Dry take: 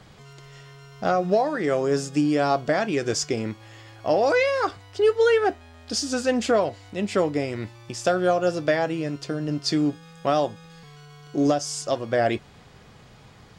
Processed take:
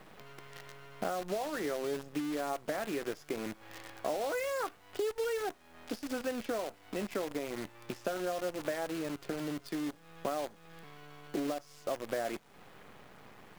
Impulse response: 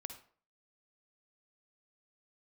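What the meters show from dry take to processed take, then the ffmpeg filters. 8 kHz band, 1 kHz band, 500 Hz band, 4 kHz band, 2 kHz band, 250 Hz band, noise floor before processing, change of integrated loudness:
−13.5 dB, −13.0 dB, −13.5 dB, −13.5 dB, −12.5 dB, −12.5 dB, −50 dBFS, −13.0 dB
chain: -filter_complex "[0:a]acompressor=threshold=-35dB:ratio=8,acrossover=split=180 3000:gain=0.141 1 0.0794[link_01][link_02][link_03];[link_01][link_02][link_03]amix=inputs=3:normalize=0,acrusher=bits=8:dc=4:mix=0:aa=0.000001,volume=2.5dB"

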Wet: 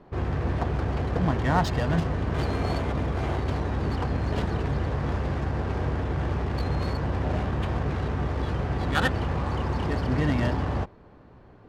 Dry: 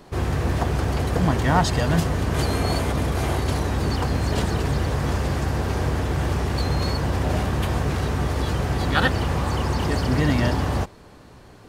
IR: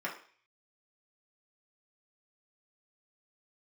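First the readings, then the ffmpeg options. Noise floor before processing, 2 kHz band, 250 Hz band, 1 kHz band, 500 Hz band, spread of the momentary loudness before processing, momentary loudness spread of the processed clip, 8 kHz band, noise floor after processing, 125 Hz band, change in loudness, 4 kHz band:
−46 dBFS, −5.0 dB, −4.0 dB, −4.5 dB, −4.0 dB, 4 LU, 4 LU, below −10 dB, −51 dBFS, −4.0 dB, −4.5 dB, −8.5 dB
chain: -af "adynamicsmooth=sensitivity=2.5:basefreq=2000,volume=-4dB"

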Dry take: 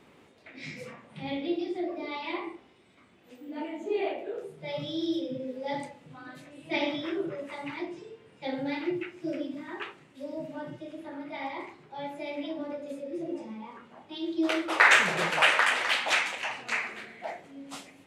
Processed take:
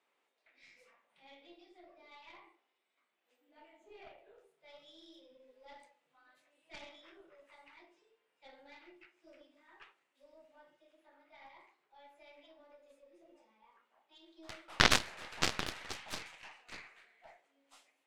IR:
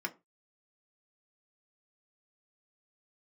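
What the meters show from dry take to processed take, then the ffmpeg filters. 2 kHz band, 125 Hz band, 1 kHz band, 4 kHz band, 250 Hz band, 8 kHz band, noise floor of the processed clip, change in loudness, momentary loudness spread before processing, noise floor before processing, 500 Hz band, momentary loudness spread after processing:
−13.5 dB, −4.0 dB, −12.5 dB, −6.5 dB, −18.0 dB, −3.5 dB, −82 dBFS, −5.0 dB, 20 LU, −58 dBFS, −16.5 dB, 25 LU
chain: -af "highpass=640,aeval=exprs='0.501*(cos(1*acos(clip(val(0)/0.501,-1,1)))-cos(1*PI/2))+0.2*(cos(2*acos(clip(val(0)/0.501,-1,1)))-cos(2*PI/2))+0.178*(cos(3*acos(clip(val(0)/0.501,-1,1)))-cos(3*PI/2))+0.00447*(cos(7*acos(clip(val(0)/0.501,-1,1)))-cos(7*PI/2))+0.00398*(cos(8*acos(clip(val(0)/0.501,-1,1)))-cos(8*PI/2))':channel_layout=same,volume=-1dB"

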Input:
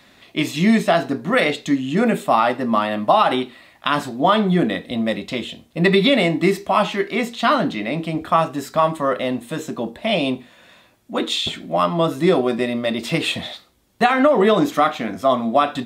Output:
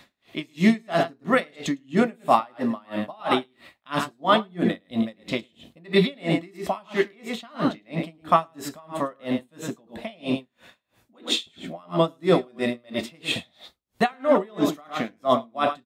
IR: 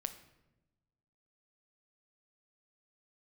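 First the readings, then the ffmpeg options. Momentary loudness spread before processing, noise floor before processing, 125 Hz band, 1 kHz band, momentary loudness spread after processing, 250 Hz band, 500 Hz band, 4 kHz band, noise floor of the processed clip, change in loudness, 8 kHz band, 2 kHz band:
10 LU, −52 dBFS, −6.5 dB, −7.0 dB, 13 LU, −6.0 dB, −6.5 dB, −6.5 dB, −68 dBFS, −6.0 dB, −5.0 dB, −7.5 dB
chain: -af "aecho=1:1:107:0.376,aeval=exprs='val(0)*pow(10,-34*(0.5-0.5*cos(2*PI*3*n/s))/20)':channel_layout=same"

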